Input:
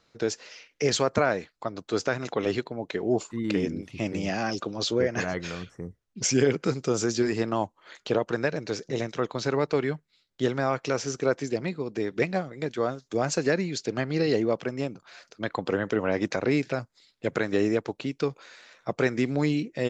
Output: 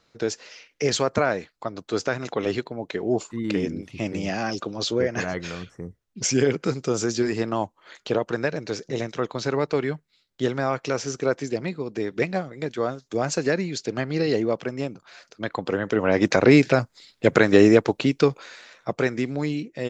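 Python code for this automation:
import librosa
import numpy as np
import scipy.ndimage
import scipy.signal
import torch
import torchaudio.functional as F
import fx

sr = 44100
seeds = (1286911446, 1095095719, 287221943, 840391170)

y = fx.gain(x, sr, db=fx.line((15.81, 1.5), (16.4, 10.0), (18.08, 10.0), (19.36, -1.5)))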